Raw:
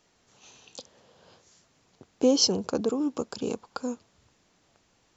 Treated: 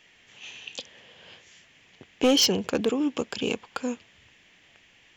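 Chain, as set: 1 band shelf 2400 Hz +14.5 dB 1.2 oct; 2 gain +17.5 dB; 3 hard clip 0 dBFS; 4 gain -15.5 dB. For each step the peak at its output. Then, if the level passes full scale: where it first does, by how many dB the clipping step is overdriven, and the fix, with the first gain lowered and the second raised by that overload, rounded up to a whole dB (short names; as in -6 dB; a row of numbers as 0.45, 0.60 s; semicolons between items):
-9.0, +8.5, 0.0, -15.5 dBFS; step 2, 8.5 dB; step 2 +8.5 dB, step 4 -6.5 dB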